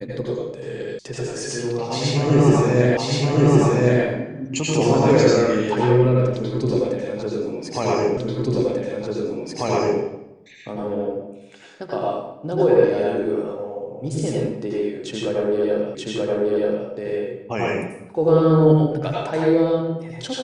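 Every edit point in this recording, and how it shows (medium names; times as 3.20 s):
0.99 s: sound stops dead
2.97 s: repeat of the last 1.07 s
8.17 s: repeat of the last 1.84 s
15.95 s: repeat of the last 0.93 s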